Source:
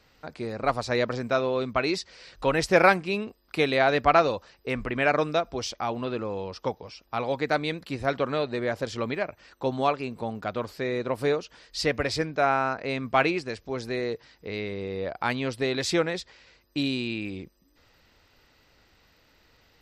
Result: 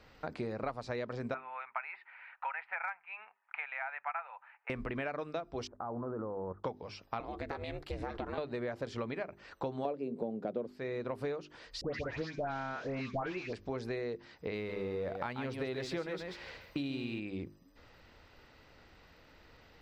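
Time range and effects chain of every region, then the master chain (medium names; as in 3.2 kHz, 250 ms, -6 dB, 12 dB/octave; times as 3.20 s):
1.34–4.70 s: elliptic band-pass 840–2400 Hz, stop band 50 dB + band-stop 1.1 kHz, Q 6.4 + hard clipper -10.5 dBFS
5.67–6.64 s: steep low-pass 1.5 kHz 48 dB/octave + level held to a coarse grid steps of 13 dB
7.20–8.38 s: compression 4:1, threshold -29 dBFS + ring modulator 200 Hz
9.85–10.67 s: high-pass 160 Hz 24 dB/octave + resonant low shelf 740 Hz +12.5 dB, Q 1.5
11.81–13.53 s: CVSD coder 32 kbps + phase dispersion highs, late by 137 ms, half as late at 1.6 kHz
14.55–17.20 s: companding laws mixed up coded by mu + peaking EQ 7.4 kHz -3.5 dB 0.74 oct + delay 137 ms -7.5 dB
whole clip: hum notches 50/100/150/200/250/300/350/400 Hz; compression 8:1, threshold -38 dBFS; treble shelf 4 kHz -12 dB; trim +3.5 dB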